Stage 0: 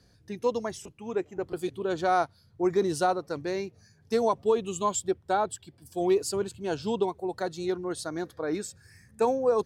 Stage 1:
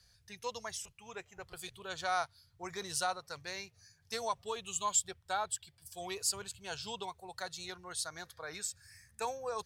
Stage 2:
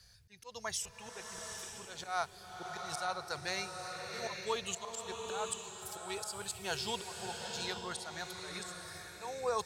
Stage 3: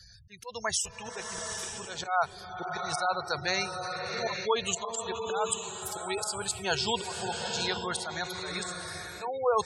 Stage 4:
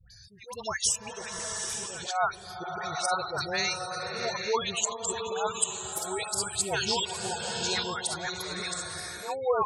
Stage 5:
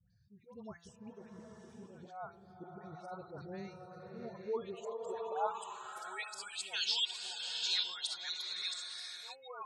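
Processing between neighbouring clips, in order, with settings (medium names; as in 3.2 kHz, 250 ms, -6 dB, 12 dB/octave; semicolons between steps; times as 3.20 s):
amplifier tone stack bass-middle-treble 10-0-10; trim +2.5 dB
slow attack 271 ms; swelling reverb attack 860 ms, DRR 3 dB; trim +4.5 dB
spectral gate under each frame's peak -20 dB strong; trim +8.5 dB
low-pass 12 kHz; treble shelf 6.9 kHz +8.5 dB; phase dispersion highs, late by 107 ms, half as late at 1.2 kHz
band-pass sweep 230 Hz -> 3.6 kHz, 4.32–6.85 s; de-hum 170.2 Hz, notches 17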